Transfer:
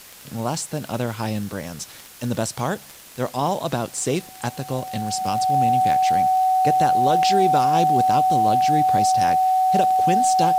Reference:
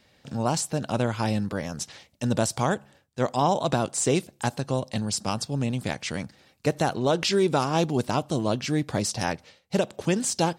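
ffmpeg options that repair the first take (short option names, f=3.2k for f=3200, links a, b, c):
-af "adeclick=t=4,bandreject=f=750:w=30,afwtdn=0.0071"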